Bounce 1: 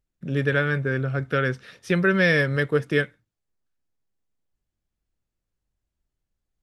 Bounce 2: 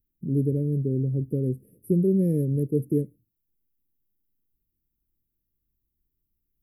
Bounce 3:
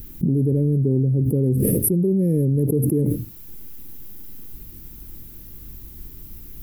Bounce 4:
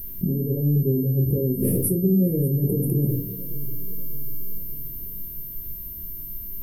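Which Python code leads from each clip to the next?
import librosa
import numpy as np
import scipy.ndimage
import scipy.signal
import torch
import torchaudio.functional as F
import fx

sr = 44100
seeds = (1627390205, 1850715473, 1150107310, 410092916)

y1 = scipy.signal.sosfilt(scipy.signal.cheby2(4, 50, [830.0, 6700.0], 'bandstop', fs=sr, output='sos'), x)
y1 = fx.bass_treble(y1, sr, bass_db=-5, treble_db=10)
y1 = y1 * librosa.db_to_amplitude(5.5)
y2 = fx.env_flatten(y1, sr, amount_pct=100)
y3 = y2 + 10.0 ** (-28.0 / 20.0) * np.sin(2.0 * np.pi * 13000.0 * np.arange(len(y2)) / sr)
y3 = fx.echo_feedback(y3, sr, ms=591, feedback_pct=53, wet_db=-17.0)
y3 = fx.room_shoebox(y3, sr, seeds[0], volume_m3=170.0, walls='furnished', distance_m=1.1)
y3 = y3 * librosa.db_to_amplitude(-5.5)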